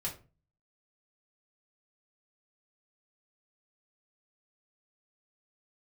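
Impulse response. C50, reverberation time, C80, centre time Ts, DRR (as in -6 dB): 11.0 dB, 0.35 s, 16.5 dB, 17 ms, -4.0 dB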